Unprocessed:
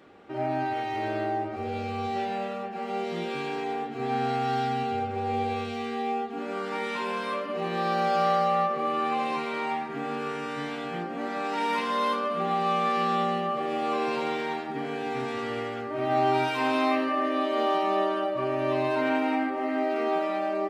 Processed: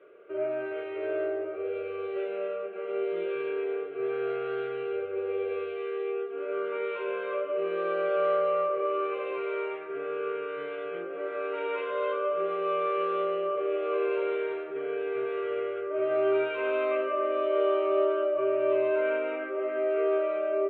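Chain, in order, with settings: speaker cabinet 280–2500 Hz, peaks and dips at 410 Hz +10 dB, 610 Hz +6 dB, 1000 Hz -8 dB, 1700 Hz +10 dB; fixed phaser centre 1200 Hz, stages 8; gain -2 dB

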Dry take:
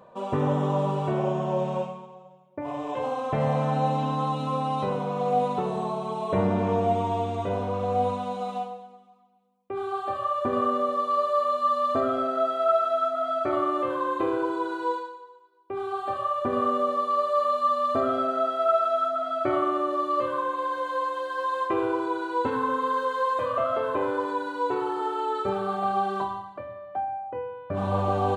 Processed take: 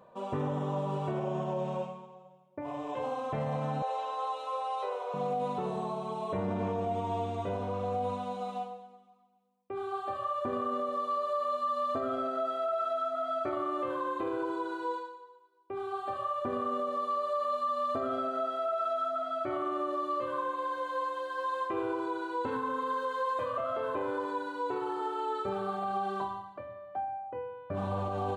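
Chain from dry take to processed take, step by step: 3.82–5.14 elliptic high-pass 420 Hz, stop band 50 dB; limiter -19 dBFS, peak gain reduction 7 dB; gain -5.5 dB

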